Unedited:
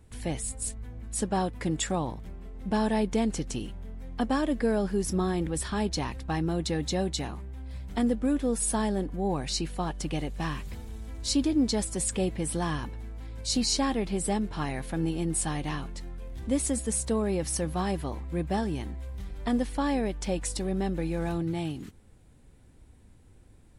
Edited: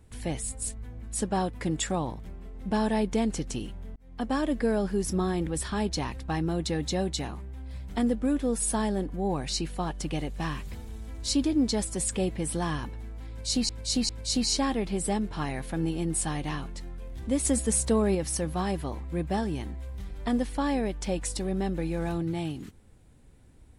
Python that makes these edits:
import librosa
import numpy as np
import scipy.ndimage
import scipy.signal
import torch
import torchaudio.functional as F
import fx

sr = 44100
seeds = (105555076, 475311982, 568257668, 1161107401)

y = fx.edit(x, sr, fx.fade_in_span(start_s=3.96, length_s=0.56, curve='qsin'),
    fx.repeat(start_s=13.29, length_s=0.4, count=3),
    fx.clip_gain(start_s=16.65, length_s=0.7, db=3.5), tone=tone)